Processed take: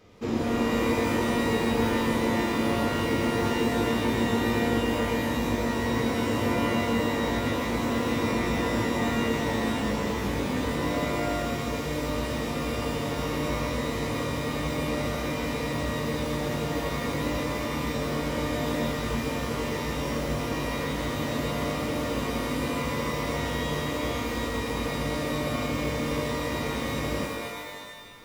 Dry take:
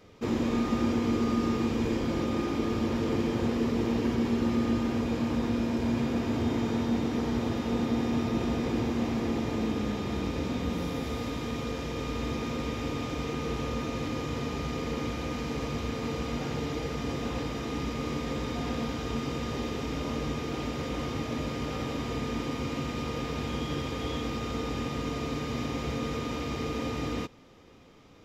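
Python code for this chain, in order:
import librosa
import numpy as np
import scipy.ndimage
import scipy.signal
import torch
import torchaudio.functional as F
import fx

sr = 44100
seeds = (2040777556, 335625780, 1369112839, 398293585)

y = fx.rev_shimmer(x, sr, seeds[0], rt60_s=1.4, semitones=12, shimmer_db=-2, drr_db=2.5)
y = y * 10.0 ** (-1.0 / 20.0)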